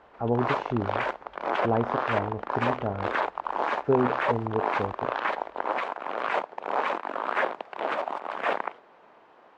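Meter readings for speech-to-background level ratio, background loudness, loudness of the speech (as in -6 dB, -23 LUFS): -0.5 dB, -30.0 LUFS, -30.5 LUFS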